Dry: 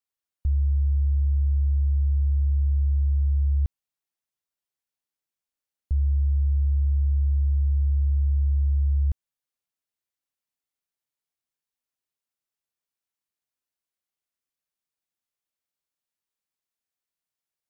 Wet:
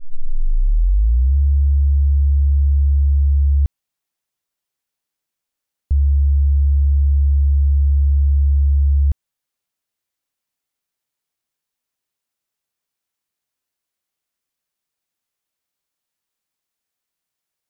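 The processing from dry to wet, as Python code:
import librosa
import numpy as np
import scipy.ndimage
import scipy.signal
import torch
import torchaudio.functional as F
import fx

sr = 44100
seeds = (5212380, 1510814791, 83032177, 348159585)

y = fx.tape_start_head(x, sr, length_s=1.36)
y = F.gain(torch.from_numpy(y), 7.5).numpy()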